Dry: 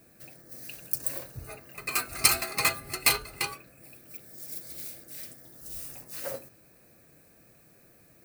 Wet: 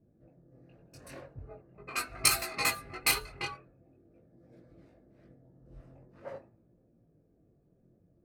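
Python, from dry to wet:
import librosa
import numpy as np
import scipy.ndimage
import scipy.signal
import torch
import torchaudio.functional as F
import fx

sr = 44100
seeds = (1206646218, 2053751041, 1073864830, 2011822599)

y = fx.env_lowpass(x, sr, base_hz=360.0, full_db=-23.0)
y = fx.chorus_voices(y, sr, voices=2, hz=0.44, base_ms=20, depth_ms=3.0, mix_pct=45)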